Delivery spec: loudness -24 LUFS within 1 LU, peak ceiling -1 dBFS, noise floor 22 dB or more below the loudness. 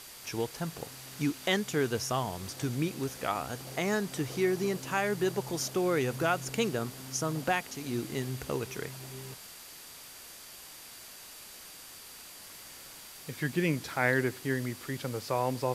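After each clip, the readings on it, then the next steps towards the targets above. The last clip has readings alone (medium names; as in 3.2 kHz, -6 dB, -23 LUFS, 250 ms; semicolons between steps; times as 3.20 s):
steady tone 4.7 kHz; tone level -57 dBFS; noise floor -49 dBFS; noise floor target -54 dBFS; loudness -32.0 LUFS; peak level -12.5 dBFS; loudness target -24.0 LUFS
-> band-stop 4.7 kHz, Q 30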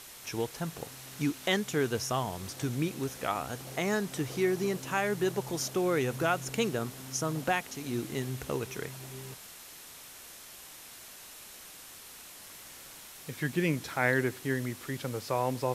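steady tone not found; noise floor -49 dBFS; noise floor target -54 dBFS
-> noise reduction 6 dB, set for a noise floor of -49 dBFS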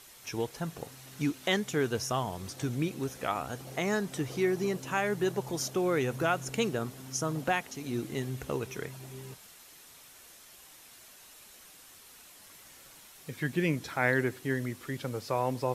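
noise floor -54 dBFS; loudness -32.0 LUFS; peak level -12.5 dBFS; loudness target -24.0 LUFS
-> trim +8 dB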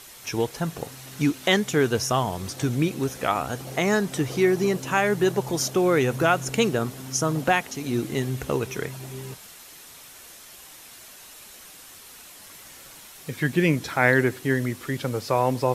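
loudness -24.0 LUFS; peak level -4.5 dBFS; noise floor -46 dBFS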